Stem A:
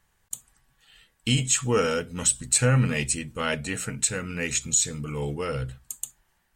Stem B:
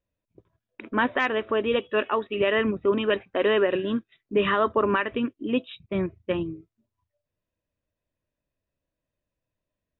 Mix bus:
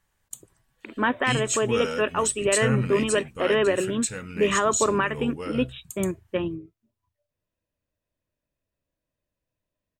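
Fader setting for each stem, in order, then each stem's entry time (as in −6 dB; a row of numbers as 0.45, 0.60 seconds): −4.5, 0.0 decibels; 0.00, 0.05 seconds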